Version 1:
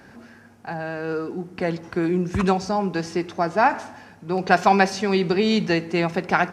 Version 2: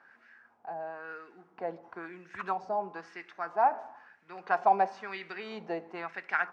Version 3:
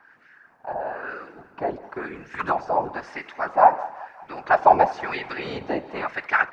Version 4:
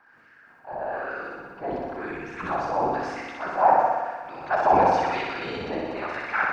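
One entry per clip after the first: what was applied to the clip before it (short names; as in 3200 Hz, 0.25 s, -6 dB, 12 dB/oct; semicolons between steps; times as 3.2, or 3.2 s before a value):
LFO band-pass sine 1 Hz 680–1900 Hz; gain -4.5 dB
whisperiser; thinning echo 0.188 s, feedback 64%, high-pass 540 Hz, level -18.5 dB; AGC gain up to 5 dB; gain +4.5 dB
notch 1900 Hz, Q 27; transient shaper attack -5 dB, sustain +7 dB; on a send: flutter echo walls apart 10.5 m, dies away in 1.3 s; on the sum: gain -3.5 dB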